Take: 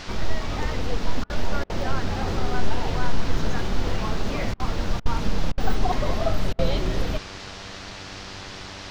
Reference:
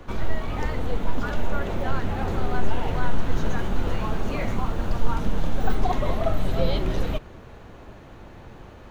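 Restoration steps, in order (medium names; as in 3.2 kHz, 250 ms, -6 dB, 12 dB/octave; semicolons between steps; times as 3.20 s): de-hum 96.7 Hz, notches 21; interpolate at 1.24/1.64/4.54/5.00/5.52/6.53 s, 56 ms; noise print and reduce 6 dB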